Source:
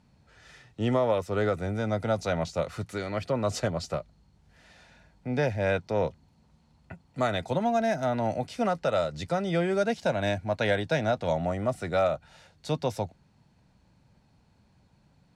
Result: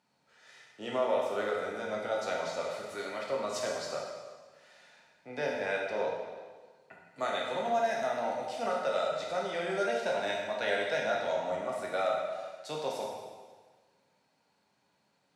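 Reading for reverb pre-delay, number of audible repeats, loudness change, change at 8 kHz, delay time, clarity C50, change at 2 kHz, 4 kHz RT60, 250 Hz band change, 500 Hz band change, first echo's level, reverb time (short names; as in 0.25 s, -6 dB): 6 ms, none, -4.5 dB, -1.5 dB, none, 1.0 dB, -1.5 dB, 1.4 s, -12.0 dB, -4.0 dB, none, 1.5 s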